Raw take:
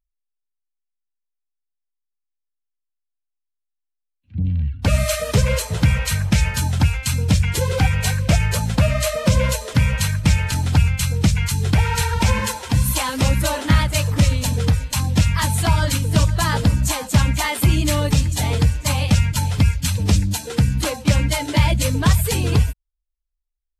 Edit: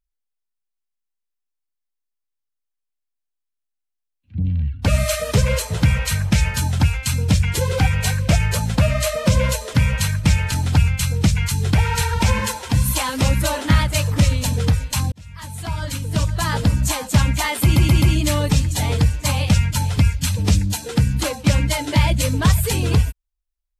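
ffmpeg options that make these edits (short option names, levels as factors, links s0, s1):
-filter_complex "[0:a]asplit=5[s0][s1][s2][s3][s4];[s0]atrim=end=15.12,asetpts=PTS-STARTPTS,afade=t=out:st=15.116:d=0.004:c=hsin[s5];[s1]atrim=start=15.12:end=17.762,asetpts=PTS-STARTPTS,afade=t=in:d=1.69[s6];[s2]atrim=start=17.628:end=17.762[s7];[s3]atrim=start=17.628:end=17.762[s8];[s4]atrim=start=17.628[s9];[s5][s6]concat=n=2:v=0:a=1[s10];[s10][s7]acrossfade=d=0.004:c1=hsin:c2=hsin[s11];[s11][s8]acrossfade=d=0.004:c1=hsin:c2=hsin[s12];[s12][s9]acrossfade=d=0.004:c1=hsin:c2=hsin"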